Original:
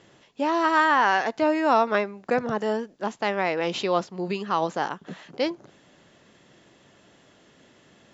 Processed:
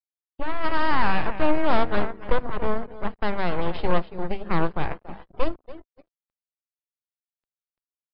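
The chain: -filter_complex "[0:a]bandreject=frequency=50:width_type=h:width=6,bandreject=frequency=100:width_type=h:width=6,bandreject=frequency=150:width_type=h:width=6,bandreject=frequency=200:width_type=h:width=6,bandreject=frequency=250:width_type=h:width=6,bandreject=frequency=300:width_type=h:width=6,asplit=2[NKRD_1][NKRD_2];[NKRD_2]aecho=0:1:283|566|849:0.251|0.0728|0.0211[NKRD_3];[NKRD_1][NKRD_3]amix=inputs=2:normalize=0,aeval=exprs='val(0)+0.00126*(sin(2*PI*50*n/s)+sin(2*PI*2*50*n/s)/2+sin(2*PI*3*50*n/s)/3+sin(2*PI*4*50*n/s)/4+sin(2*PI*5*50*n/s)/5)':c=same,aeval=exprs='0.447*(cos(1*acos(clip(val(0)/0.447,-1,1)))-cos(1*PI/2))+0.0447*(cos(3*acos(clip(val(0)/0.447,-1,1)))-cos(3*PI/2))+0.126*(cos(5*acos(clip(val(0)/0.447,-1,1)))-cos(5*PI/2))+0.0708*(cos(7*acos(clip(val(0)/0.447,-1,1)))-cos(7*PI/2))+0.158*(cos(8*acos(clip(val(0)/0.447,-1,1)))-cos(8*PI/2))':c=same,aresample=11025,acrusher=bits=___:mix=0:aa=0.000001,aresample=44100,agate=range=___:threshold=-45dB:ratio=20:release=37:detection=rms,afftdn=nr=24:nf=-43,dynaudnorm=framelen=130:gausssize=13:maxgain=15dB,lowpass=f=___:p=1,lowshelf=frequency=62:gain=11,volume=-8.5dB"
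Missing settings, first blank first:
6, -8dB, 1.4k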